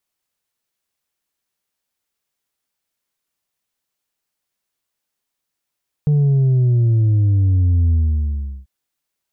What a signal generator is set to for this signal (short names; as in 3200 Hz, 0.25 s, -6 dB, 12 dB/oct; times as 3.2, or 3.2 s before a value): sub drop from 150 Hz, over 2.59 s, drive 3 dB, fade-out 0.74 s, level -12 dB